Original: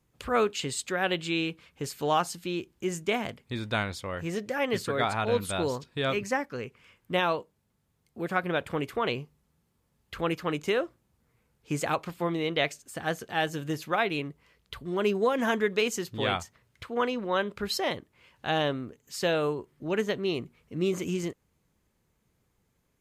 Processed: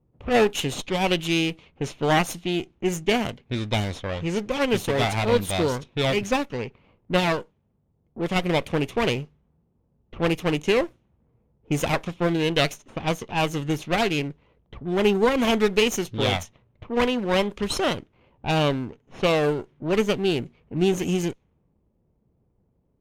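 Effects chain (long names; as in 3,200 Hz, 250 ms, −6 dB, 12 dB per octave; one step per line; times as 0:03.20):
lower of the sound and its delayed copy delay 0.32 ms
low-pass that shuts in the quiet parts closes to 760 Hz, open at −27 dBFS
level +6.5 dB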